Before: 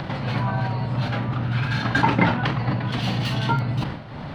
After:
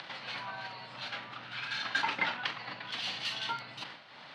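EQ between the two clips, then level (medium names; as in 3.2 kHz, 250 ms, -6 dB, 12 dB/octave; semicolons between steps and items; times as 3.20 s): high-pass 130 Hz 6 dB/octave; low-pass 4.3 kHz 12 dB/octave; differentiator; +4.5 dB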